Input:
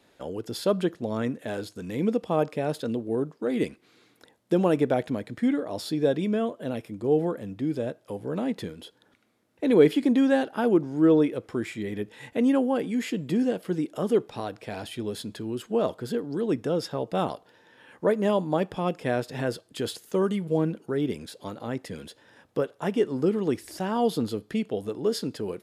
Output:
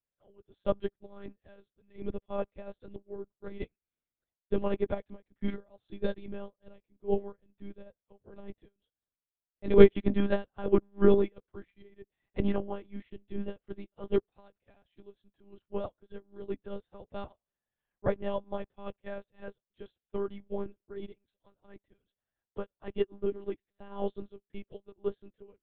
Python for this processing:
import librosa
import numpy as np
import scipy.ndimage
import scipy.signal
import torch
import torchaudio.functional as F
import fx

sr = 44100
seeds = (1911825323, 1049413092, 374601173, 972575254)

y = fx.lpc_monotone(x, sr, seeds[0], pitch_hz=200.0, order=10)
y = fx.upward_expand(y, sr, threshold_db=-41.0, expansion=2.5)
y = y * librosa.db_to_amplitude(4.0)